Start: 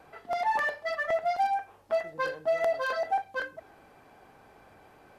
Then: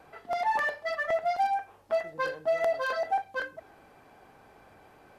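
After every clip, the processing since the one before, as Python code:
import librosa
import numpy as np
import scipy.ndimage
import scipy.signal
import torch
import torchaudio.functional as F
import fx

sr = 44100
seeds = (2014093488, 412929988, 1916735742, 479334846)

y = x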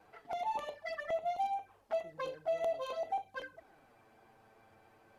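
y = fx.env_flanger(x, sr, rest_ms=11.1, full_db=-27.5)
y = y * 10.0 ** (-5.0 / 20.0)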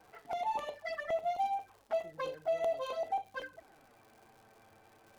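y = fx.dmg_crackle(x, sr, seeds[0], per_s=170.0, level_db=-53.0)
y = y * 10.0 ** (1.5 / 20.0)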